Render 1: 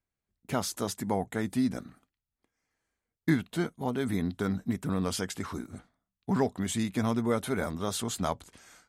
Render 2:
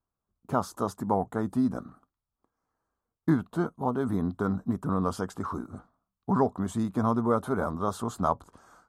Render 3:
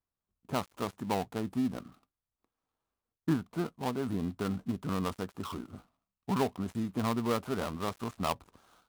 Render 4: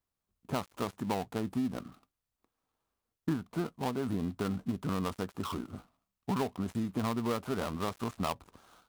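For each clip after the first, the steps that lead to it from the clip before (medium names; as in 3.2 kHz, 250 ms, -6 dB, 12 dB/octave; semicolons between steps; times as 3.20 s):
resonant high shelf 1.6 kHz -10.5 dB, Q 3; trim +1.5 dB
dead-time distortion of 0.18 ms; trim -5 dB
compression 2.5:1, threshold -33 dBFS, peak gain reduction 7 dB; trim +3 dB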